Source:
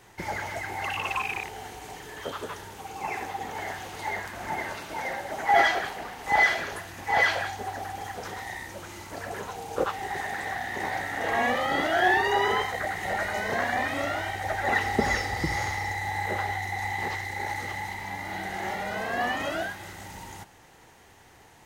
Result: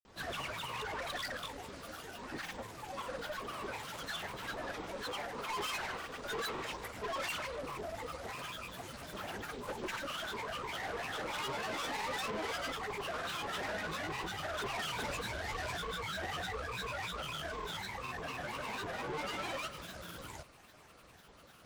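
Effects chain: valve stage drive 33 dB, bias 0.45; granulator, pitch spread up and down by 12 st; trim -2 dB

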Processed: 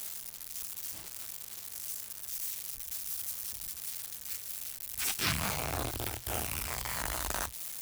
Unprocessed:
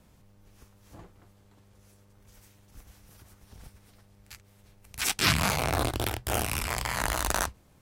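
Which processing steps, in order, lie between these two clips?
zero-crossing glitches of -22 dBFS; trim -8 dB

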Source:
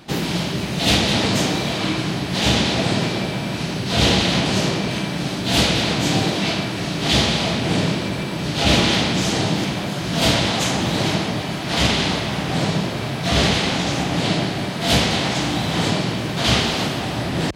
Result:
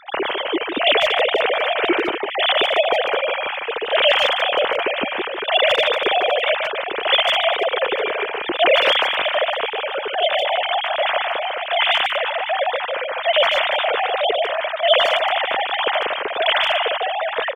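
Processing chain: formants replaced by sine waves; 9.54–10.67 s: compression 1.5:1, threshold -22 dBFS, peak gain reduction 4.5 dB; speakerphone echo 150 ms, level -6 dB

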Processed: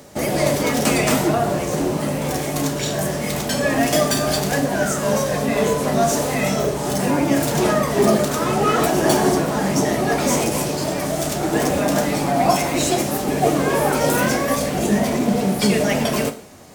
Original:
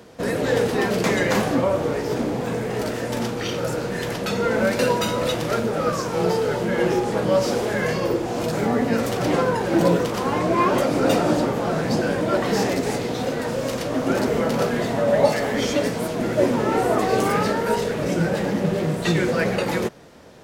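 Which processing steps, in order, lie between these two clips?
tone controls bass +5 dB, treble +10 dB; two-slope reverb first 0.61 s, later 2 s, from -25 dB, DRR 7.5 dB; wide varispeed 1.22×

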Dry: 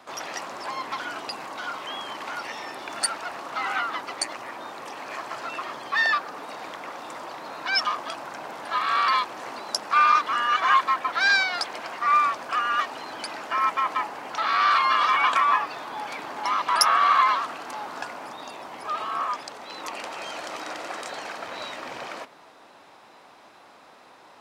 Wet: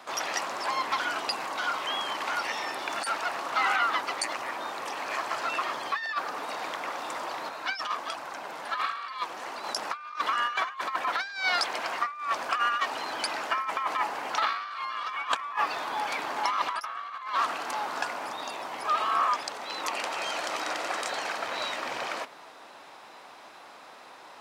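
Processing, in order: bass shelf 370 Hz -8 dB; compressor with a negative ratio -27 dBFS, ratio -0.5; 7.49–9.64 s: flange 1.4 Hz, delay 0.4 ms, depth 6.3 ms, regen +59%

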